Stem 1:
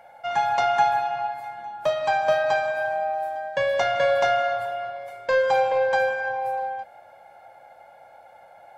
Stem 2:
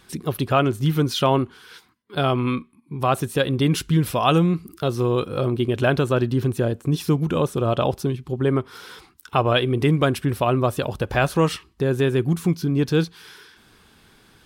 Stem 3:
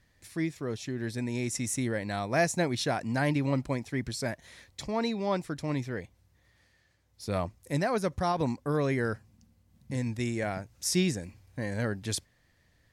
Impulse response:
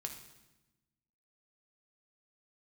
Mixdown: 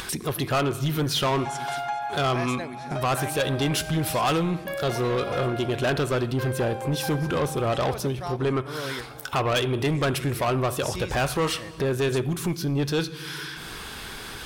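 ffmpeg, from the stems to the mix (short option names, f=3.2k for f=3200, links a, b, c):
-filter_complex "[0:a]adelay=1100,volume=-9.5dB[a];[1:a]volume=1dB,asplit=3[b][c][d];[c]volume=-6dB[e];[2:a]volume=-5dB,asplit=3[f][g][h];[g]volume=-20dB[i];[h]volume=-22.5dB[j];[d]apad=whole_len=570142[k];[f][k]sidechaingate=range=-33dB:threshold=-41dB:ratio=16:detection=peak[l];[3:a]atrim=start_sample=2205[m];[e][i]amix=inputs=2:normalize=0[n];[n][m]afir=irnorm=-1:irlink=0[o];[j]aecho=0:1:424:1[p];[a][b][l][o][p]amix=inputs=5:normalize=0,equalizer=f=180:w=0.59:g=-8,acompressor=mode=upward:threshold=-23dB:ratio=2.5,asoftclip=type=tanh:threshold=-19dB"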